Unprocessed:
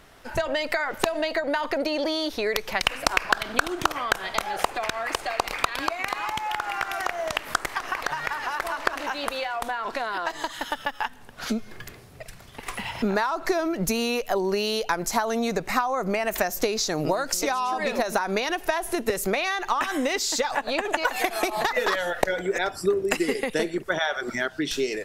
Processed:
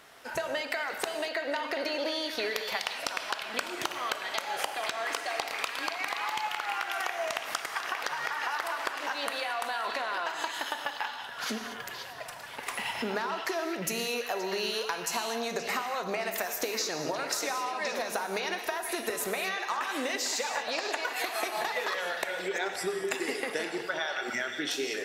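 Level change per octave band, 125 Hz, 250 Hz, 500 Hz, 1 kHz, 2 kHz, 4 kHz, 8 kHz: -12.5, -10.0, -7.5, -6.0, -4.5, -3.5, -4.0 dB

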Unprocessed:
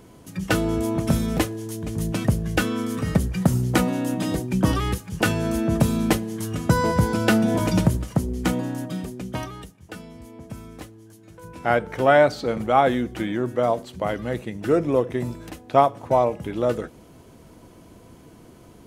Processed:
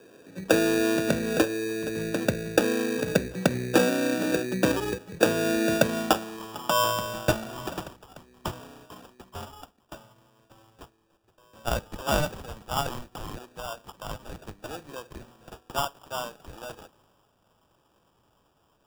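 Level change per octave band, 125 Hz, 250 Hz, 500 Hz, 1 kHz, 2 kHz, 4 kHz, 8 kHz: -11.5, -6.0, -4.5, -7.0, -2.5, +1.0, 0.0 dB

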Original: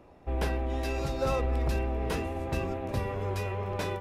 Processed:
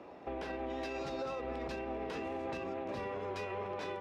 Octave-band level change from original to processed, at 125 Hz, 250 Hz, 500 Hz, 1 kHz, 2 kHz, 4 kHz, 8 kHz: -18.5, -6.5, -5.5, -5.0, -5.5, -7.0, -13.0 dB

